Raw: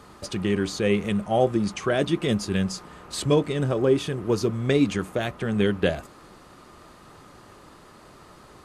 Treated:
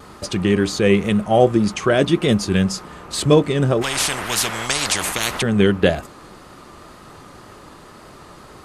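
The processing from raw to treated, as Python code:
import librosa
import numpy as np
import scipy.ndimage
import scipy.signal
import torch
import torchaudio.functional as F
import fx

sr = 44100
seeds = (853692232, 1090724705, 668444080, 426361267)

y = fx.vibrato(x, sr, rate_hz=1.9, depth_cents=39.0)
y = fx.spectral_comp(y, sr, ratio=10.0, at=(3.81, 5.41), fade=0.02)
y = y * 10.0 ** (7.0 / 20.0)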